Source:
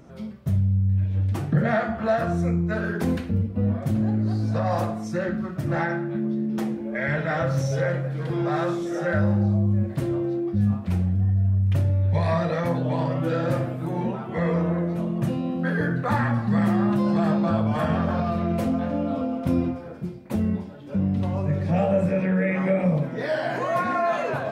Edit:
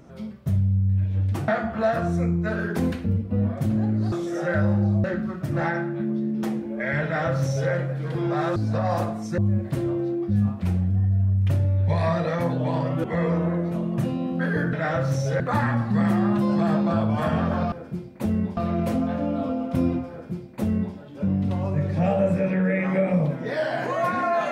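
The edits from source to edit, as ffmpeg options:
-filter_complex "[0:a]asplit=11[s0][s1][s2][s3][s4][s5][s6][s7][s8][s9][s10];[s0]atrim=end=1.482[s11];[s1]atrim=start=1.728:end=4.372[s12];[s2]atrim=start=8.708:end=9.632[s13];[s3]atrim=start=5.188:end=8.712[s14];[s4]atrim=start=4.368:end=5.192[s15];[s5]atrim=start=9.628:end=13.292[s16];[s6]atrim=start=14.278:end=15.972[s17];[s7]atrim=start=7.188:end=7.862[s18];[s8]atrim=start=15.968:end=18.292[s19];[s9]atrim=start=19.818:end=20.672[s20];[s10]atrim=start=18.288[s21];[s11][s12]acrossfade=d=0.004:c1=hsin:c2=hsin[s22];[s22][s13]acrossfade=d=0.004:c1=hsin:c2=hsin[s23];[s23][s14]acrossfade=d=0.004:c1=hsin:c2=hsin[s24];[s24][s15]acrossfade=d=0.004:c1=hsin:c2=hsin[s25];[s25][s16]acrossfade=d=0.004:c1=hsin:c2=hsin[s26];[s26][s17]acrossfade=d=0.004:c1=hsin:c2=hsin[s27];[s27][s18]acrossfade=d=0.004:c1=hsin:c2=hsin[s28];[s28][s19]acrossfade=d=0.004:c1=hsin:c2=hsin[s29];[s29][s20]acrossfade=d=0.004:c1=hsin:c2=hsin[s30];[s30][s21]acrossfade=d=0.004:c1=hsin:c2=hsin"

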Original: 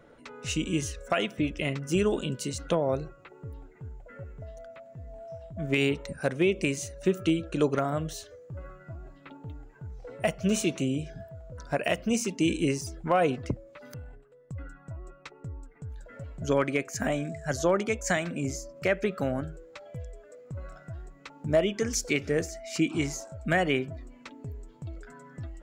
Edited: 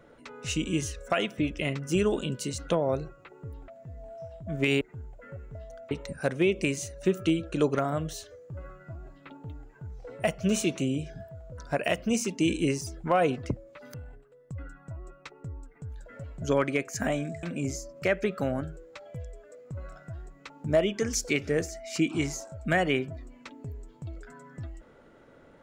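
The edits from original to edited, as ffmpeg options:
-filter_complex "[0:a]asplit=5[s0][s1][s2][s3][s4];[s0]atrim=end=3.682[s5];[s1]atrim=start=4.778:end=5.912[s6];[s2]atrim=start=3.678:end=4.782[s7];[s3]atrim=start=5.908:end=17.432[s8];[s4]atrim=start=18.228[s9];[s5][s6]acrossfade=d=0.004:c1=hsin:c2=hsin[s10];[s10][s7]acrossfade=d=0.004:c1=hsin:c2=hsin[s11];[s11][s8]acrossfade=d=0.004:c1=hsin:c2=hsin[s12];[s12][s9]acrossfade=d=0.004:c1=hsin:c2=hsin"

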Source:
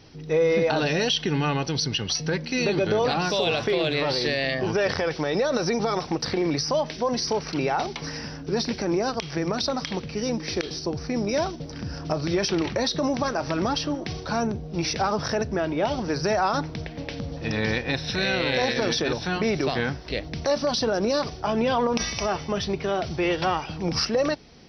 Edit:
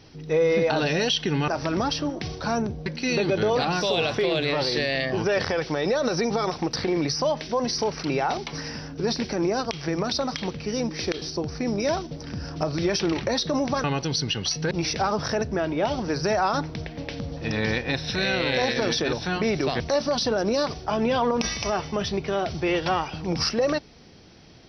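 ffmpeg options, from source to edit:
-filter_complex "[0:a]asplit=6[s0][s1][s2][s3][s4][s5];[s0]atrim=end=1.482[s6];[s1]atrim=start=13.328:end=14.712[s7];[s2]atrim=start=2.348:end=13.332[s8];[s3]atrim=start=1.478:end=2.352[s9];[s4]atrim=start=14.708:end=19.802[s10];[s5]atrim=start=20.358[s11];[s6][s7]acrossfade=d=0.004:c1=hsin:c2=hsin[s12];[s12][s8]acrossfade=d=0.004:c1=hsin:c2=hsin[s13];[s13][s9]acrossfade=d=0.004:c1=hsin:c2=hsin[s14];[s14][s10]acrossfade=d=0.004:c1=hsin:c2=hsin[s15];[s15][s11]acrossfade=d=0.004:c1=hsin:c2=hsin"

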